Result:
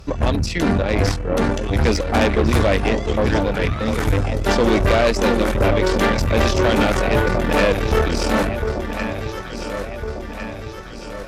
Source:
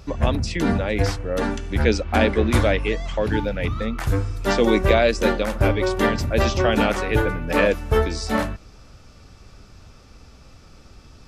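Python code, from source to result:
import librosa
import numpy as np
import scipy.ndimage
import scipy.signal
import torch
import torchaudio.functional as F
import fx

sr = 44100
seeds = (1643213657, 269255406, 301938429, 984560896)

y = fx.echo_alternate(x, sr, ms=702, hz=950.0, feedback_pct=74, wet_db=-7.5)
y = fx.tube_stage(y, sr, drive_db=18.0, bias=0.7)
y = F.gain(torch.from_numpy(y), 7.0).numpy()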